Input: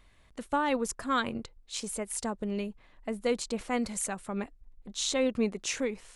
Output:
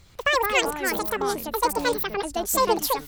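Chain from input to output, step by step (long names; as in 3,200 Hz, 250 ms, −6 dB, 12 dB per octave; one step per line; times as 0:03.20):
delay with pitch and tempo change per echo 116 ms, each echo −6 semitones, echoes 3, each echo −6 dB
time-frequency box erased 0:03.90–0:04.46, 3,100–6,700 Hz
wrong playback speed 7.5 ips tape played at 15 ips
level +7 dB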